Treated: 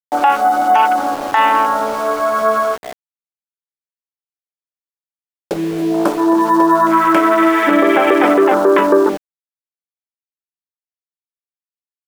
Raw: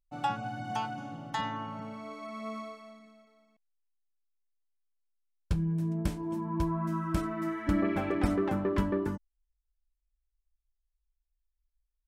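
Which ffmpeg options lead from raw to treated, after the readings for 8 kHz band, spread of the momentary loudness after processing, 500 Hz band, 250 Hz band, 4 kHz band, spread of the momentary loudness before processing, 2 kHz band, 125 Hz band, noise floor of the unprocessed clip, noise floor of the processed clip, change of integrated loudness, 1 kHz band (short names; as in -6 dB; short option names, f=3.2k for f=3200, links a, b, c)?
+18.5 dB, 7 LU, +22.5 dB, +16.0 dB, +17.5 dB, 13 LU, +22.5 dB, -2.0 dB, -83 dBFS, under -85 dBFS, +19.5 dB, +24.0 dB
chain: -af "afwtdn=0.00891,highpass=f=370:w=0.5412,highpass=f=370:w=1.3066,acompressor=threshold=-36dB:ratio=2.5,aeval=exprs='val(0)*gte(abs(val(0)),0.002)':c=same,alimiter=level_in=29dB:limit=-1dB:release=50:level=0:latency=1,volume=-1dB"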